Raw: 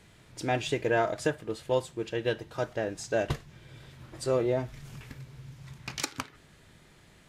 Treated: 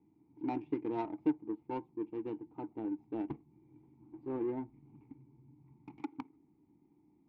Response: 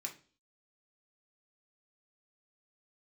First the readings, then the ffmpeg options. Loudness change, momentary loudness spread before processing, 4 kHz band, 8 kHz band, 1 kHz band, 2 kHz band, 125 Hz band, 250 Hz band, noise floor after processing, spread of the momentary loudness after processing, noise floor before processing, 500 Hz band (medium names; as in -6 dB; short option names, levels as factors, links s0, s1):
-8.5 dB, 20 LU, under -25 dB, under -40 dB, -9.0 dB, -22.5 dB, -15.5 dB, -0.5 dB, -69 dBFS, 21 LU, -58 dBFS, -13.0 dB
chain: -filter_complex "[0:a]asplit=3[s0][s1][s2];[s0]bandpass=f=300:t=q:w=8,volume=1[s3];[s1]bandpass=f=870:t=q:w=8,volume=0.501[s4];[s2]bandpass=f=2240:t=q:w=8,volume=0.355[s5];[s3][s4][s5]amix=inputs=3:normalize=0,adynamicsmooth=sensitivity=4:basefreq=560,volume=2.11"